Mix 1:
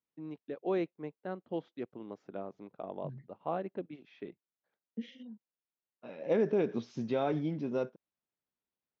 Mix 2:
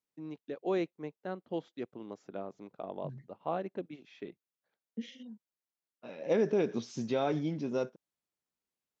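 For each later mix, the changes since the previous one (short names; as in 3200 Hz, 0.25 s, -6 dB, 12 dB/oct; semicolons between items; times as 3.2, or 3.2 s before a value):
master: remove air absorption 180 m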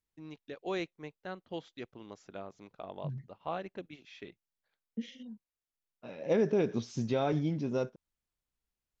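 first voice: add tilt shelf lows -6.5 dB, about 1100 Hz; master: remove HPF 180 Hz 12 dB/oct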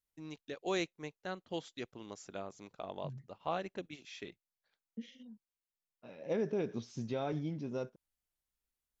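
first voice: remove air absorption 150 m; second voice -6.5 dB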